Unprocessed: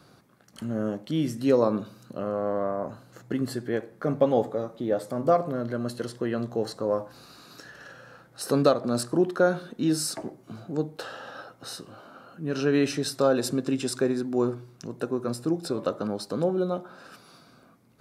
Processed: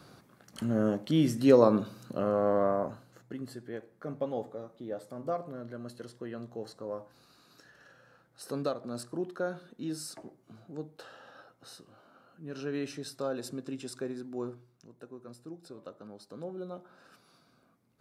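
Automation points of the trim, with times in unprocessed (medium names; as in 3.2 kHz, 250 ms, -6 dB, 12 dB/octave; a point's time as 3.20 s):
2.75 s +1 dB
3.32 s -12 dB
14.46 s -12 dB
14.92 s -18.5 dB
16.02 s -18.5 dB
17.01 s -11 dB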